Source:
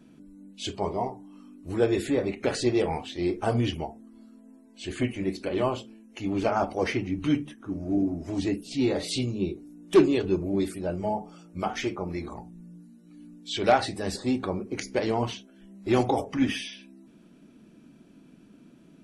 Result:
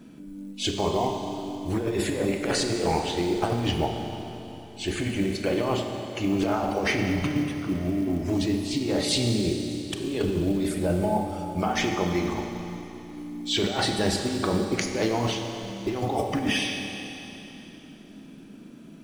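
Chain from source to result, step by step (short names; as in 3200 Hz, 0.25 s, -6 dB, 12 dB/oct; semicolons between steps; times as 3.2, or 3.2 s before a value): negative-ratio compressor -29 dBFS, ratio -1; Schroeder reverb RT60 3.3 s, combs from 30 ms, DRR 4 dB; short-mantissa float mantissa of 4-bit; gain +3 dB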